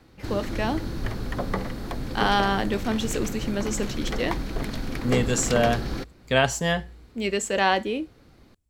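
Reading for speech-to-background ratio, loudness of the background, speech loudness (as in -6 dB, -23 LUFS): 5.5 dB, -31.5 LUFS, -26.0 LUFS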